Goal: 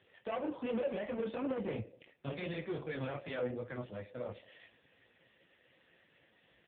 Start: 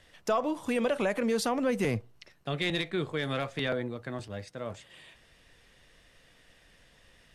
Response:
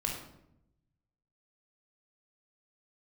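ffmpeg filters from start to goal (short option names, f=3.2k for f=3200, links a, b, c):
-filter_complex "[0:a]asoftclip=type=tanh:threshold=-31dB,flanger=delay=17.5:depth=6.9:speed=2.5,atempo=1.1,asplit=2[a][b];[b]asplit=3[c][d][e];[c]bandpass=f=530:t=q:w=8,volume=0dB[f];[d]bandpass=f=1.84k:t=q:w=8,volume=-6dB[g];[e]bandpass=f=2.48k:t=q:w=8,volume=-9dB[h];[f][g][h]amix=inputs=3:normalize=0[i];[1:a]atrim=start_sample=2205,afade=t=out:st=0.37:d=0.01,atrim=end_sample=16758[j];[i][j]afir=irnorm=-1:irlink=0,volume=-4dB[k];[a][k]amix=inputs=2:normalize=0,volume=1dB" -ar 8000 -c:a libopencore_amrnb -b:a 5150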